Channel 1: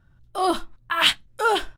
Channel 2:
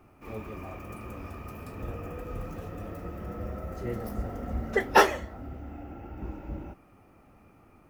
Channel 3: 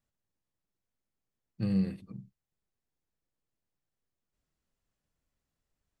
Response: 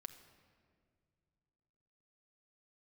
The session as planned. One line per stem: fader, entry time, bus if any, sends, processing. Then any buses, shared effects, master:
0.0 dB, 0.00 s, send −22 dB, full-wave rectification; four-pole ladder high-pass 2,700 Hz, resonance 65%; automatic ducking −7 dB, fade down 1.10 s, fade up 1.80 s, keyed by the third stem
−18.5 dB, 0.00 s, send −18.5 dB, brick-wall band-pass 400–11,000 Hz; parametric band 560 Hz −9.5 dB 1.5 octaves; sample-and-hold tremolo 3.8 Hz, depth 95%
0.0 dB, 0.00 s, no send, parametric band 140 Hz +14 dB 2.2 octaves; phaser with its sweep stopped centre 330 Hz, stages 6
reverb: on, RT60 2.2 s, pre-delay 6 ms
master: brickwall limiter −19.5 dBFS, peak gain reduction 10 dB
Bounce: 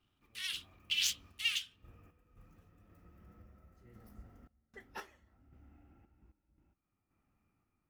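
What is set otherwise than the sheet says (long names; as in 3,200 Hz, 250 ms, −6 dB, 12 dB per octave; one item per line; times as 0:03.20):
stem 2: missing brick-wall band-pass 400–11,000 Hz
stem 3: muted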